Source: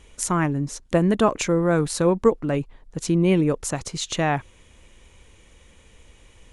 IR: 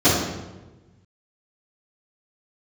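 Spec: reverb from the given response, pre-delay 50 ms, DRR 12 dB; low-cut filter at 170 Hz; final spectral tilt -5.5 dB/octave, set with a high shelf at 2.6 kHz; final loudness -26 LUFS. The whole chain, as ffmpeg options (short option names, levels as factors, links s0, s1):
-filter_complex "[0:a]highpass=170,highshelf=f=2600:g=-8.5,asplit=2[s0][s1];[1:a]atrim=start_sample=2205,adelay=50[s2];[s1][s2]afir=irnorm=-1:irlink=0,volume=0.0188[s3];[s0][s3]amix=inputs=2:normalize=0,volume=0.708"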